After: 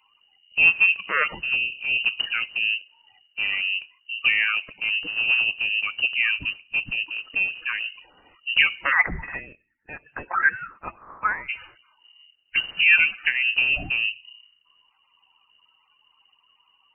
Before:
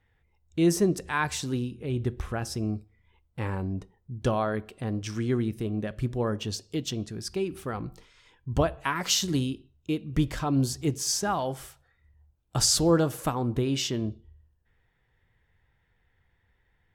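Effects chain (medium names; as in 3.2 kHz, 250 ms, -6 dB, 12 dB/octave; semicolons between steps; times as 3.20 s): coarse spectral quantiser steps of 30 dB; 8.91–11.48 s: resonant high-pass 840 Hz -> 2 kHz, resonance Q 10; frequency inversion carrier 2.9 kHz; trim +5.5 dB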